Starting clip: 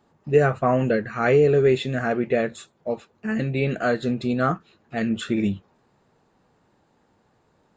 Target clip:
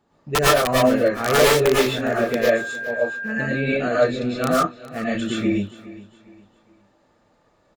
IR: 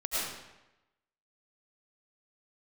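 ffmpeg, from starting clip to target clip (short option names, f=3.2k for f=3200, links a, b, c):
-filter_complex "[0:a]aeval=exprs='(mod(3.16*val(0)+1,2)-1)/3.16':c=same,aecho=1:1:410|820|1230:0.126|0.0428|0.0146,asettb=1/sr,asplit=3[a][b][c];[a]atrim=end=2.284[d];[b]atrim=start=2.28:end=3.62,asetpts=PTS-STARTPTS,afade=t=in:d=0.004:c=qsin,afade=t=out:st=1.336:d=0.004:c=qsin,aeval=exprs='val(0)+0.0316*sin(2*PI*1600*n/s)':c=same[e];[c]atrim=start=3.616[f];[d][e]acrossfade=d=0.004:c1=hsin:c2=qsin[g];[g][f]acrossfade=d=0.004:c1=qsin:c2=hsin[h];[1:a]atrim=start_sample=2205,afade=t=out:st=0.19:d=0.01,atrim=end_sample=8820,asetrate=41013,aresample=44100[i];[h][i]afir=irnorm=-1:irlink=0,volume=-2dB"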